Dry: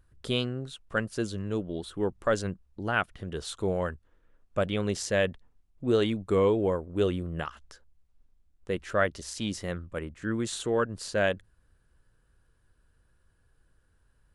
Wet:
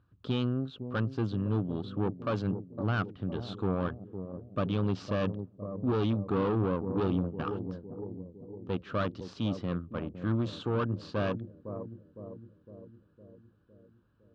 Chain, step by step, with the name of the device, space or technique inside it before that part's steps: 7.00–7.46 s: gate with hold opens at -24 dBFS; analogue delay pedal into a guitar amplifier (bucket-brigade echo 508 ms, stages 2048, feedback 59%, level -11.5 dB; valve stage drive 28 dB, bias 0.65; cabinet simulation 78–4000 Hz, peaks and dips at 110 Hz +10 dB, 180 Hz +7 dB, 270 Hz +8 dB, 1.2 kHz +7 dB, 2 kHz -10 dB)

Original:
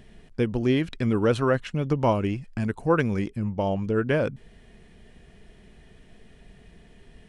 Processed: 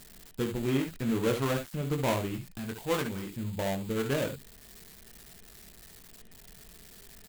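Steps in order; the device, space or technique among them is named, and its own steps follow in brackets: 2.53–3.31 s: bass shelf 240 Hz -6.5 dB; early reflections 22 ms -5 dB, 66 ms -8.5 dB, 77 ms -12.5 dB; budget class-D amplifier (dead-time distortion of 0.24 ms; zero-crossing glitches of -24 dBFS); trim -7.5 dB

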